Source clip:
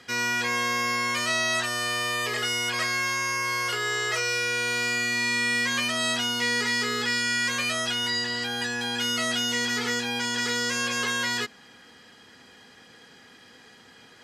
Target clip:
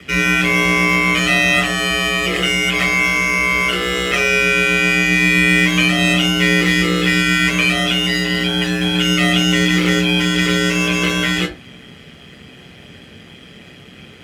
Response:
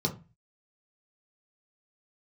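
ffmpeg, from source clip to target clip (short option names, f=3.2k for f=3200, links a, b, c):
-filter_complex "[0:a]acrusher=bits=2:mode=log:mix=0:aa=0.000001,aeval=exprs='val(0)*sin(2*PI*64*n/s)':c=same[a];[1:a]atrim=start_sample=2205,atrim=end_sample=3528,asetrate=25137,aresample=44100[b];[a][b]afir=irnorm=-1:irlink=0,volume=2dB"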